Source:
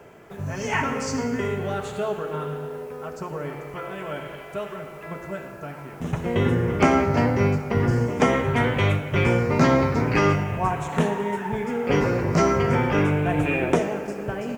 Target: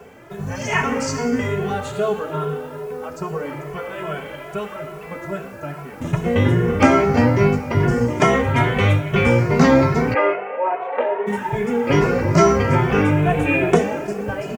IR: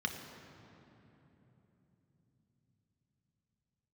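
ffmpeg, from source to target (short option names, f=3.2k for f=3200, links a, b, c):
-filter_complex "[0:a]asplit=3[a][b][c];[a]afade=t=out:st=10.13:d=0.02[d];[b]highpass=f=420:w=0.5412,highpass=f=420:w=1.3066,equalizer=f=540:t=q:w=4:g=8,equalizer=f=1.1k:t=q:w=4:g=-4,equalizer=f=1.7k:t=q:w=4:g=-4,lowpass=f=2.3k:w=0.5412,lowpass=f=2.3k:w=1.3066,afade=t=in:st=10.13:d=0.02,afade=t=out:st=11.26:d=0.02[e];[c]afade=t=in:st=11.26:d=0.02[f];[d][e][f]amix=inputs=3:normalize=0,asplit=2[g][h];[h]adelay=2.3,afreqshift=2.4[i];[g][i]amix=inputs=2:normalize=1,volume=7.5dB"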